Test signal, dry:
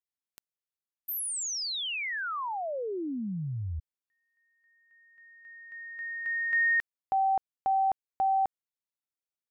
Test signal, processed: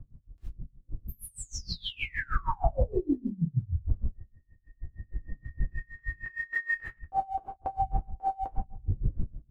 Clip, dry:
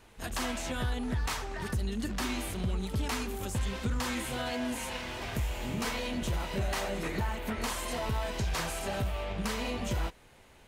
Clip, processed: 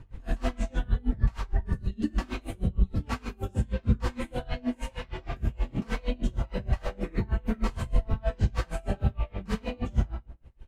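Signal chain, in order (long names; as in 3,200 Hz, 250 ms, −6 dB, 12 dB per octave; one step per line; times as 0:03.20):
wind on the microphone 80 Hz −42 dBFS
RIAA equalisation playback
reverb reduction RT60 1.7 s
low-shelf EQ 140 Hz −7 dB
downward compressor 3 to 1, threshold −25 dBFS
phase shifter 1.8 Hz, delay 4.6 ms, feedback 29%
feedback echo with a low-pass in the loop 241 ms, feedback 18%, low-pass 910 Hz, level −21 dB
reverb whose tail is shaped and stops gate 200 ms falling, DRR −5.5 dB
tremolo with a sine in dB 6.4 Hz, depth 27 dB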